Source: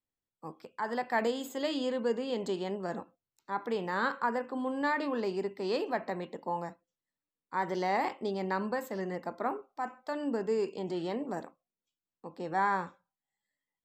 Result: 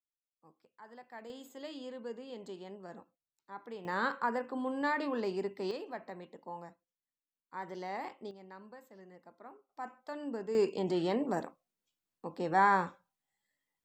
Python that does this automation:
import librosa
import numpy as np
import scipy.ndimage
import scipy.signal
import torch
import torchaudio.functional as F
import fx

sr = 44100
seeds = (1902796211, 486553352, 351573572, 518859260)

y = fx.gain(x, sr, db=fx.steps((0.0, -19.0), (1.3, -12.0), (3.85, -2.0), (5.71, -10.0), (8.31, -19.0), (9.69, -6.5), (10.55, 3.0)))